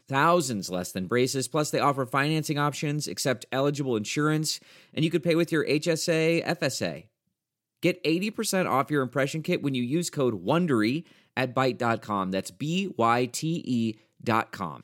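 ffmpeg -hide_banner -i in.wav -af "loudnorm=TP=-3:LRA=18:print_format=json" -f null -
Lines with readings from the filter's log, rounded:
"input_i" : "-27.0",
"input_tp" : "-8.8",
"input_lra" : "2.1",
"input_thresh" : "-37.0",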